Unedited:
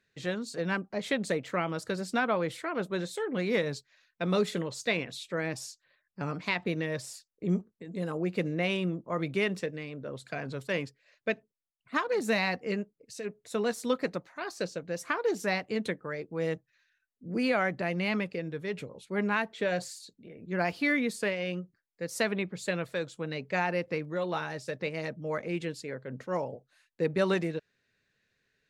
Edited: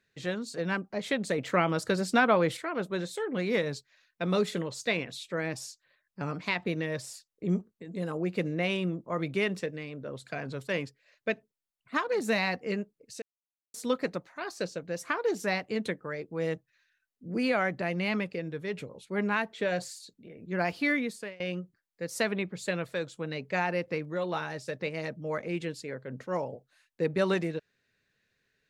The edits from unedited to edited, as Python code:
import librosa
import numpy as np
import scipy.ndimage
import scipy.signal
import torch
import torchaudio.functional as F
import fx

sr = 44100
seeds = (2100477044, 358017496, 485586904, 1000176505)

y = fx.edit(x, sr, fx.clip_gain(start_s=1.38, length_s=1.19, db=5.0),
    fx.silence(start_s=13.22, length_s=0.52),
    fx.fade_out_to(start_s=20.91, length_s=0.49, floor_db=-22.0), tone=tone)